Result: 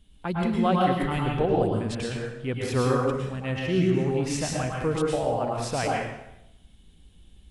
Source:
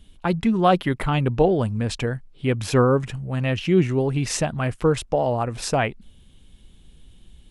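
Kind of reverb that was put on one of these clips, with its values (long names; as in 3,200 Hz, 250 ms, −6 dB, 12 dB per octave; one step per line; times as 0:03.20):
dense smooth reverb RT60 0.86 s, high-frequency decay 0.85×, pre-delay 95 ms, DRR −2.5 dB
level −8 dB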